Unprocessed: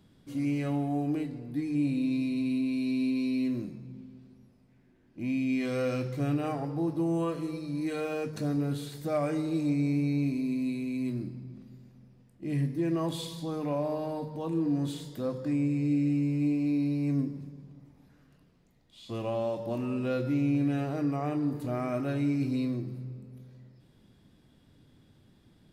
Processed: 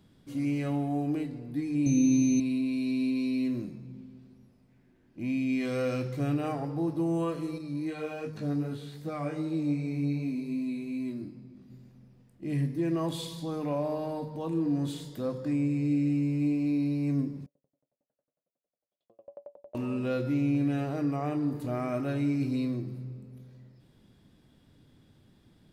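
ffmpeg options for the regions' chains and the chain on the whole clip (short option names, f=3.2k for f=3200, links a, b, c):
-filter_complex "[0:a]asettb=1/sr,asplit=3[a][b][c];[a]atrim=end=1.864[d];[b]atrim=start=1.86:end=2.4,asetpts=PTS-STARTPTS,afade=t=in:d=0.004:c=qsin,afade=t=out:st=0.536:d=0.004:c=qsin,lowshelf=f=420:g=6.5,asplit=2[e][f];[f]adelay=16,volume=-12.5dB[g];[e][g]amix=inputs=2:normalize=0,atrim=end_sample=23814,aeval=exprs='val(0)+0.0126*sin(2*PI*6200*n/s)':c=same[h];[c]atrim=start=2.396[i];[d][h]acrossfade=d=0.004:c1=hsin:c2=qsin[j];[j][i]acrossfade=d=0.004:c1=qsin:c2=hsin,asettb=1/sr,asplit=3[k][l][m];[k]atrim=end=7.584[n];[l]atrim=start=7.58:end=11.7,asetpts=PTS-STARTPTS,afade=t=in:d=0.004:c=qsin,afade=t=out:st=4.116:d=0.004:c=qsin,acrossover=split=4500[o][p];[p]acompressor=threshold=-57dB:ratio=4:attack=1:release=60[q];[o][q]amix=inputs=2:normalize=0,flanger=delay=18.5:depth=2.3:speed=2.6[r];[m]atrim=start=11.696[s];[n][r]acrossfade=d=0.004:c1=hsin:c2=qsin[t];[t][s]acrossfade=d=0.004:c1=qsin:c2=hsin,asettb=1/sr,asplit=3[u][v][w];[u]atrim=end=17.464[x];[v]atrim=start=17.46:end=19.75,asetpts=PTS-STARTPTS,afade=t=in:d=0.004:c=qsin,afade=t=out:st=2.286:d=0.004:c=qsin,acompressor=threshold=-37dB:ratio=2.5:attack=3.2:release=140:knee=1:detection=peak,bandpass=f=580:t=q:w=6.8,aeval=exprs='val(0)*pow(10,-38*if(lt(mod(11*n/s,1),2*abs(11)/1000),1-mod(11*n/s,1)/(2*abs(11)/1000),(mod(11*n/s,1)-2*abs(11)/1000)/(1-2*abs(11)/1000))/20)':c=same[y];[w]atrim=start=19.746[z];[x][y]acrossfade=d=0.004:c1=hsin:c2=qsin[aa];[aa][z]acrossfade=d=0.004:c1=qsin:c2=hsin"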